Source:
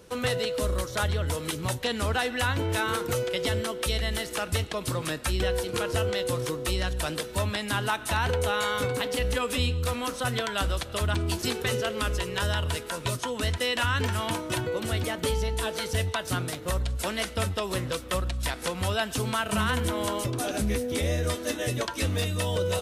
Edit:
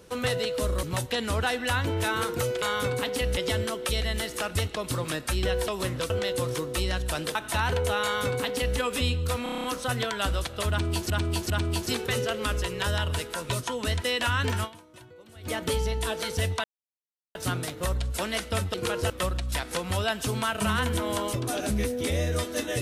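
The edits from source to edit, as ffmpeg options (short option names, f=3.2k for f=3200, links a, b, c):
-filter_complex "[0:a]asplit=21[a][b][c][d][e][f][g][h][i][j][k][l][m][n][o][p][q][r][s][t][u];[a]atrim=end=0.832[v];[b]atrim=start=1.548:end=3.342[w];[c]atrim=start=8.598:end=9.352[x];[d]atrim=start=3.338:end=5.652[y];[e]atrim=start=17.588:end=18.012[z];[f]atrim=start=6.008:end=7.262[aa];[g]atrim=start=7.918:end=10.032[ab];[h]atrim=start=9.998:end=10.032[ac];[i]atrim=start=9.998:end=10.032[ad];[j]atrim=start=9.998:end=10.032[ae];[k]atrim=start=9.998:end=10.032[af];[l]atrim=start=9.998:end=10.032[ag];[m]atrim=start=9.998:end=10.032[ah];[n]atrim=start=9.998:end=11.462[ai];[o]atrim=start=11.058:end=11.462[aj];[p]atrim=start=11.058:end=14.48,asetpts=PTS-STARTPTS,afade=t=out:st=3.142:d=0.28:c=exp:silence=0.0944061[ak];[q]atrim=start=14.48:end=14.77,asetpts=PTS-STARTPTS,volume=-20.5dB[al];[r]atrim=start=14.77:end=16.2,asetpts=PTS-STARTPTS,afade=t=in:d=0.28:c=exp:silence=0.0944061,afade=t=out:st=1.426:d=0.004:c=hsin,apad=pad_dur=0.71[am];[s]atrim=start=16.2:end=17.592,asetpts=PTS-STARTPTS,afade=t=in:d=0.004:c=hsin[an];[t]atrim=start=5.648:end=6.012[ao];[u]atrim=start=18.008[ap];[v][w]acrossfade=d=0.004:c1=hsin:c2=hsin[aq];[aq][x]acrossfade=d=0.004:c1=hsin:c2=hsin[ar];[ar][y]acrossfade=d=0.004:c1=hsin:c2=hsin[as];[as][z]acrossfade=d=0.004:c1=hsin:c2=hsin[at];[at][aa]acrossfade=d=0.004:c1=hsin:c2=hsin[au];[au][ab]acrossfade=d=0.004:c1=hsin:c2=hsin[av];[av][ac]acrossfade=d=0.004:c1=hsin:c2=hsin[aw];[aw][ad]acrossfade=d=0.004:c1=hsin:c2=hsin[ax];[ax][ae]acrossfade=d=0.004:c1=hsin:c2=hsin[ay];[ay][af]acrossfade=d=0.004:c1=hsin:c2=hsin[az];[az][ag]acrossfade=d=0.004:c1=hsin:c2=hsin[ba];[ba][ah]acrossfade=d=0.004:c1=hsin:c2=hsin[bb];[bb][ai]acrossfade=d=0.004:c1=hsin:c2=hsin[bc];[bc][aj]acrossfade=d=0.004:c1=hsin:c2=hsin[bd];[ak][al][am][an]concat=n=4:v=0:a=1[be];[bd][be]acrossfade=d=0.004:c1=hsin:c2=hsin[bf];[bf][ao]acrossfade=d=0.004:c1=hsin:c2=hsin[bg];[bg][ap]acrossfade=d=0.004:c1=hsin:c2=hsin"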